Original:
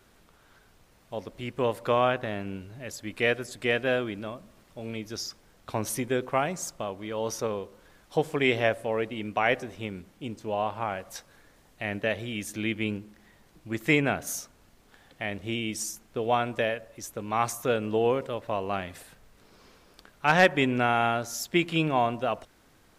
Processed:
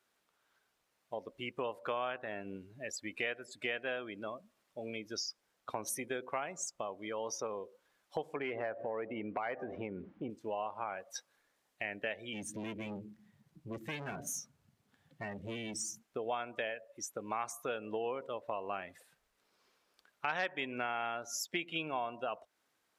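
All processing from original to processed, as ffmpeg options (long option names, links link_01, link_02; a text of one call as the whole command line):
ffmpeg -i in.wav -filter_complex "[0:a]asettb=1/sr,asplit=3[link_01][link_02][link_03];[link_01]atrim=end=8.364[link_04];[link_02]atrim=start=8.36:end=10.3,asetpts=PTS-STARTPTS,afade=type=in:duration=0.004:curve=qsin,afade=type=out:start_time=1.936:duration=0.004:curve=qsin,lowpass=1700,acompressor=threshold=-42dB:ratio=2:attack=3.2:release=140:knee=1:detection=peak,aeval=exprs='0.106*sin(PI/2*2.24*val(0)/0.106)':channel_layout=same[link_05];[link_03]atrim=start=10.296[link_06];[link_04][link_05]acrossfade=duration=0.004:curve1=hsin:curve2=qsin[link_07];[link_07][link_06]acrossfade=duration=0.004:curve1=qsin:curve2=hsin,asettb=1/sr,asplit=3[link_08][link_09][link_10];[link_08]atrim=end=12.334[link_11];[link_09]atrim=start=12.33:end=16.02,asetpts=PTS-STARTPTS,afade=type=in:duration=0.004:curve=qsin,afade=type=out:start_time=3.686:duration=0.004:curve=qsin,equalizer=frequency=130:width_type=o:width=2.1:gain=14.5,aeval=exprs='(tanh(31.6*val(0)+0.4)-tanh(0.4))/31.6':channel_layout=same[link_12];[link_10]atrim=start=16.016[link_13];[link_11][link_12]acrossfade=duration=0.004:curve1=hsin:curve2=qsin[link_14];[link_14][link_13]acrossfade=duration=0.004:curve1=qsin:curve2=hsin,afftdn=noise_reduction=18:noise_floor=-39,highpass=frequency=720:poles=1,acompressor=threshold=-41dB:ratio=3,volume=3.5dB" out.wav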